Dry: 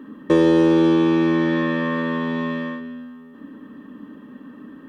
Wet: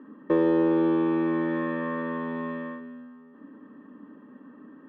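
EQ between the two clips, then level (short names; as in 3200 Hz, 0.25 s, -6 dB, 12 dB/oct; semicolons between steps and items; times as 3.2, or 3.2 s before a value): HPF 290 Hz 6 dB/oct; LPF 1600 Hz 12 dB/oct; -4.5 dB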